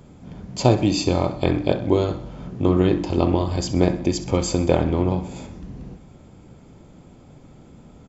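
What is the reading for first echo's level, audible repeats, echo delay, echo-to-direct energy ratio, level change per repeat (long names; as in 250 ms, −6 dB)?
−14.5 dB, 4, 64 ms, −13.0 dB, −5.5 dB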